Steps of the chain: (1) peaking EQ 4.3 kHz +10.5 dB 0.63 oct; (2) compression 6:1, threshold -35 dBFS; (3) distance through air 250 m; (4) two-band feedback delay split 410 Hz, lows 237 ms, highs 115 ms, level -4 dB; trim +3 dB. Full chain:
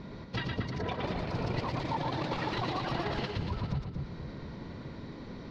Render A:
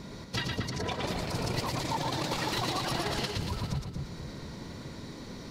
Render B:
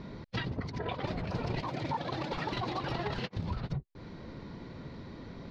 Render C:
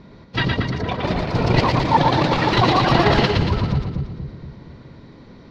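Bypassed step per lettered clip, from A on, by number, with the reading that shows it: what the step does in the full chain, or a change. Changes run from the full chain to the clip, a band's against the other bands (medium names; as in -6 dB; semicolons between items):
3, 4 kHz band +6.5 dB; 4, echo-to-direct -2.5 dB to none; 2, mean gain reduction 9.5 dB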